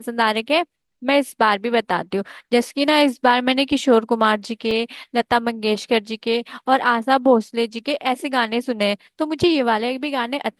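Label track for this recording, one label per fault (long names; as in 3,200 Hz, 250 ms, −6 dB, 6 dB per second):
4.710000	4.710000	drop-out 2.5 ms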